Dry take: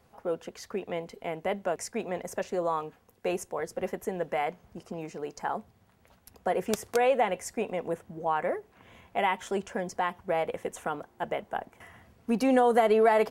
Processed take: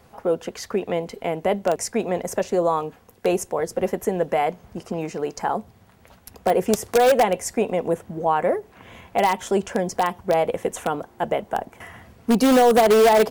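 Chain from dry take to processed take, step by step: dynamic bell 1.8 kHz, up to -6 dB, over -43 dBFS, Q 0.78; in parallel at -9 dB: integer overflow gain 19.5 dB; on the sum: trim +7.5 dB

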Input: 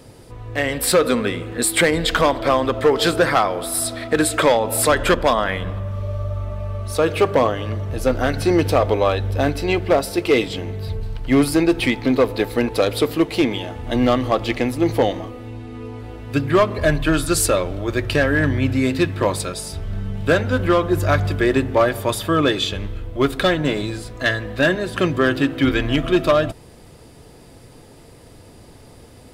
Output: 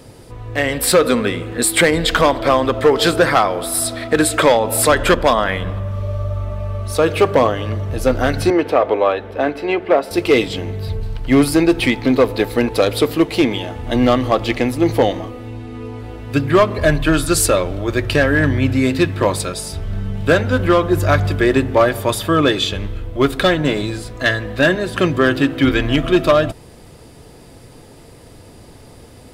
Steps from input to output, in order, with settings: 8.50–10.11 s: three-band isolator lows -20 dB, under 240 Hz, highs -16 dB, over 3 kHz; trim +3 dB

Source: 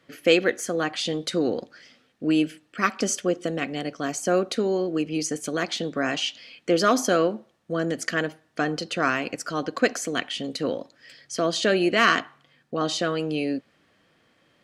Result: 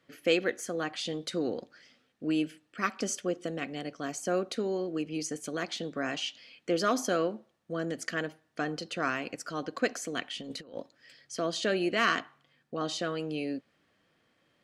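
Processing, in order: 10.41–10.81 s: compressor with a negative ratio -33 dBFS, ratio -0.5; trim -7.5 dB

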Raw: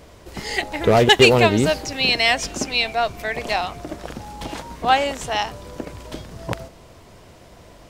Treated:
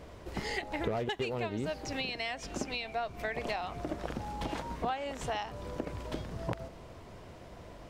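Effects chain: compression 16:1, threshold -27 dBFS, peak gain reduction 20 dB; treble shelf 3.9 kHz -9.5 dB; trim -3 dB

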